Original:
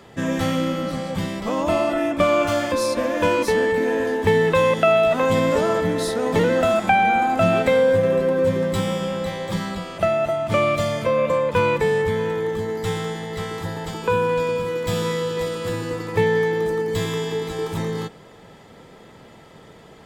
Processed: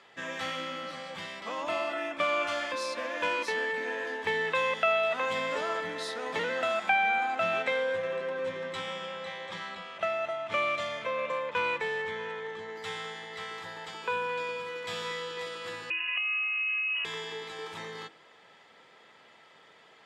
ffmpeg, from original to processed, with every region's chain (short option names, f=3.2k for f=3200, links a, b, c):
-filter_complex "[0:a]asettb=1/sr,asplit=3[a][b][c];[a]atrim=end=7.354[d];[b]atrim=start=7.35:end=12.76,asetpts=PTS-STARTPTS,afade=t=in:d=0.004:c=qsin,afade=t=out:st=5.406:d=0.004:c=qsin,bandreject=f=4.7k:w=8.9,adynamicsmooth=sensitivity=7.5:basefreq=5.2k[e];[c]atrim=start=12.756[f];[d][e]acrossfade=d=0.004:c1=hsin:c2=qsin[g];[g][f]acrossfade=d=0.004:c1=qsin:c2=hsin,asettb=1/sr,asplit=3[h][i][j];[h]atrim=end=15.904[k];[i]atrim=start=15.9:end=17.05,asetpts=PTS-STARTPTS,afade=t=in:d=0.004:c=qsin,afade=t=out:st=1.146:d=0.004:c=qsin,aecho=1:1:2.1:0.58,atrim=end_sample=50715,acompressor=threshold=-23dB:ratio=16:attack=3.2:release=140:knee=1:detection=peak,lowpass=f=2.6k:t=q:w=0.5098,lowpass=f=2.6k:t=q:w=0.6013,lowpass=f=2.6k:t=q:w=0.9,lowpass=f=2.6k:t=q:w=2.563,afreqshift=-3000[l];[j]atrim=start=17.046[m];[k][l]acrossfade=d=0.004:c1=hsin:c2=qsin[n];[n][m]acrossfade=d=0.004:c1=qsin:c2=hsin,lowpass=2.4k,aderivative,bandreject=f=66.08:t=h:w=4,bandreject=f=132.16:t=h:w=4,bandreject=f=198.24:t=h:w=4,bandreject=f=264.32:t=h:w=4,bandreject=f=330.4:t=h:w=4,volume=8.5dB"